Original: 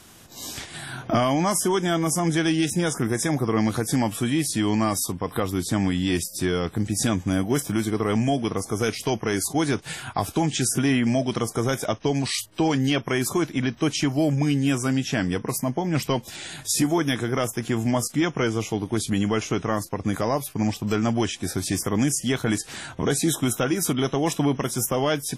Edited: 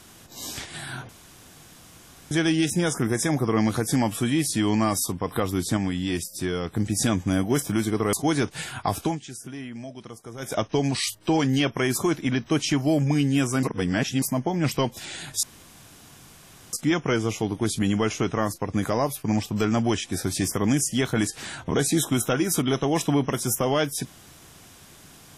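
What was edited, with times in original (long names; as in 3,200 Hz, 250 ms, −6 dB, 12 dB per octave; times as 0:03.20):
0:01.09–0:02.31: fill with room tone
0:05.77–0:06.74: clip gain −3.5 dB
0:08.13–0:09.44: remove
0:10.34–0:11.86: duck −15.5 dB, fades 0.17 s
0:14.94–0:15.53: reverse
0:16.74–0:18.04: fill with room tone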